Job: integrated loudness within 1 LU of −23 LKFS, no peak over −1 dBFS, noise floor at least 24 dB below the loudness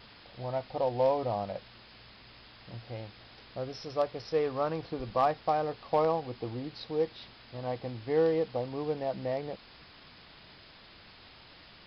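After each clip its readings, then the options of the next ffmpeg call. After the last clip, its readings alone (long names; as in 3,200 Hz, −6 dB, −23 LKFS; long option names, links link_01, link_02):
background noise floor −54 dBFS; target noise floor −57 dBFS; integrated loudness −32.5 LKFS; sample peak −17.0 dBFS; target loudness −23.0 LKFS
→ -af "afftdn=noise_reduction=6:noise_floor=-54"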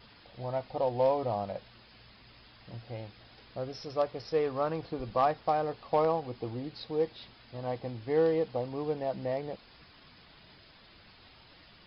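background noise floor −57 dBFS; integrated loudness −32.5 LKFS; sample peak −17.0 dBFS; target loudness −23.0 LKFS
→ -af "volume=9.5dB"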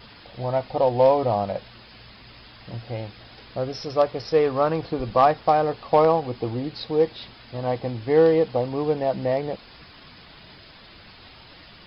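integrated loudness −23.0 LKFS; sample peak −7.5 dBFS; background noise floor −48 dBFS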